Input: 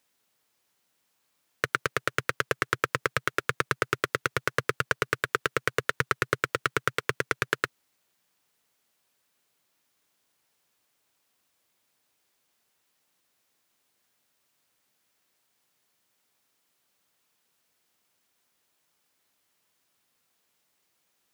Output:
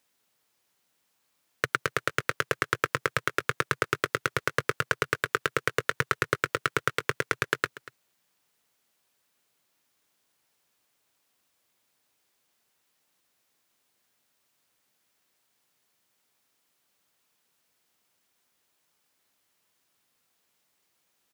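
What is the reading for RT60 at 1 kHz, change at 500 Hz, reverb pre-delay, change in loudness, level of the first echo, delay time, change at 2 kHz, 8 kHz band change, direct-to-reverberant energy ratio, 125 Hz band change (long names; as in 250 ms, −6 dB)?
no reverb audible, 0.0 dB, no reverb audible, 0.0 dB, −18.5 dB, 238 ms, 0.0 dB, 0.0 dB, no reverb audible, 0.0 dB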